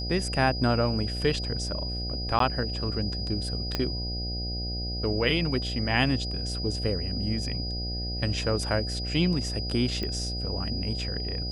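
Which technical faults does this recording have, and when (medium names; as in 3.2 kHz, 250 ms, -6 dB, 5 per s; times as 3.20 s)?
buzz 60 Hz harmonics 13 -33 dBFS
whine 4.9 kHz -34 dBFS
2.39–2.40 s: dropout 13 ms
3.75 s: pop -13 dBFS
10.03 s: pop -20 dBFS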